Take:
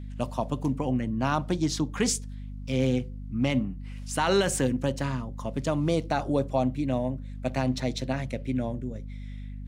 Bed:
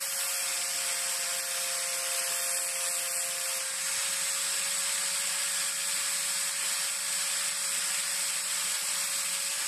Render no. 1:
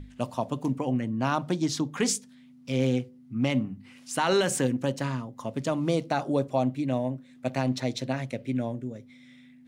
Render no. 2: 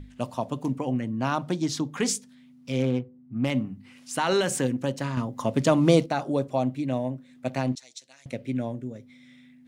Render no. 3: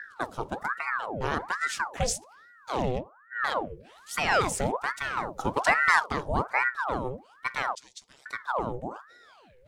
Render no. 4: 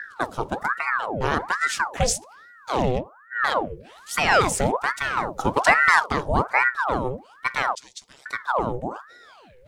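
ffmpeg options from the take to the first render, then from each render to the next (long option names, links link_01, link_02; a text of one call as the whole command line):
ffmpeg -i in.wav -af "bandreject=frequency=50:width_type=h:width=6,bandreject=frequency=100:width_type=h:width=6,bandreject=frequency=150:width_type=h:width=6,bandreject=frequency=200:width_type=h:width=6" out.wav
ffmpeg -i in.wav -filter_complex "[0:a]asettb=1/sr,asplit=3[link_01][link_02][link_03];[link_01]atrim=end=2.824[link_04];[link_02]atrim=start=2.82:end=3.5,asetpts=PTS-STARTPTS,afade=type=in:duration=0.004:curve=qsin,afade=type=out:start_time=0.676:duration=0.004:curve=qsin,adynamicsmooth=sensitivity=4:basefreq=1200[link_05];[link_03]atrim=start=3.496[link_06];[link_04][link_05]acrossfade=duration=0.004:curve1=hsin:curve2=qsin[link_07];[link_07][link_06]acrossfade=duration=0.004:curve1=qsin:curve2=hsin,asettb=1/sr,asplit=3[link_08][link_09][link_10];[link_08]atrim=end=7.754[link_11];[link_09]atrim=start=7.75:end=8.26,asetpts=PTS-STARTPTS,afade=type=in:duration=0.004:curve=qsin,afade=type=out:start_time=0.506:duration=0.004:curve=qsin,bandpass=frequency=7200:width_type=q:width=1.8[link_12];[link_10]atrim=start=8.256[link_13];[link_11][link_12]acrossfade=duration=0.004:curve1=hsin:curve2=qsin[link_14];[link_14][link_13]acrossfade=duration=0.004:curve1=qsin:curve2=hsin,asplit=3[link_15][link_16][link_17];[link_15]atrim=end=5.172[link_18];[link_16]atrim=start=5.168:end=6.062,asetpts=PTS-STARTPTS,volume=7.5dB[link_19];[link_17]atrim=start=6.058[link_20];[link_18][link_19]acrossfade=duration=0.004:curve1=hsin:curve2=hsin[link_21];[link_21][link_20]acrossfade=duration=0.004:curve1=hsin:curve2=hsin" out.wav
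ffmpeg -i in.wav -af "aphaser=in_gain=1:out_gain=1:delay=1.9:decay=0.25:speed=0.46:type=triangular,aeval=exprs='val(0)*sin(2*PI*970*n/s+970*0.75/1.2*sin(2*PI*1.2*n/s))':channel_layout=same" out.wav
ffmpeg -i in.wav -af "volume=6dB,alimiter=limit=-3dB:level=0:latency=1" out.wav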